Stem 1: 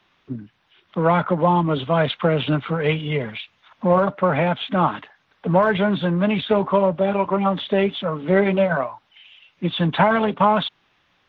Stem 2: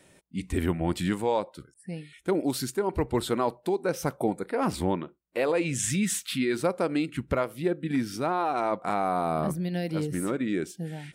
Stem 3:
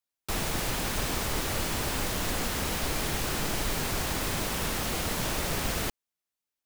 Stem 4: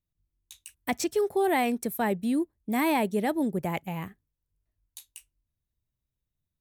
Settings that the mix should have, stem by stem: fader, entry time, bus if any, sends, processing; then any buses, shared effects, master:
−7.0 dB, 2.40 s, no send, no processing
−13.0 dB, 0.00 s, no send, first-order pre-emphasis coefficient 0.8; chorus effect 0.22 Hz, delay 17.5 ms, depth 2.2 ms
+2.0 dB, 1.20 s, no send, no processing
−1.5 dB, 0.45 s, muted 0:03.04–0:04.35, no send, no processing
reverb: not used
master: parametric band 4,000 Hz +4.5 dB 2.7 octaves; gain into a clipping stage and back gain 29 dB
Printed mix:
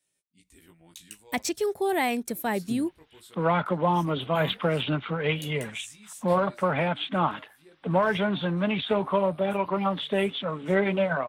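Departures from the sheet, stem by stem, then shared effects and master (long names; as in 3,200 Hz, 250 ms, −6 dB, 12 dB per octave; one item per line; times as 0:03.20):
stem 3: muted
master: missing gain into a clipping stage and back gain 29 dB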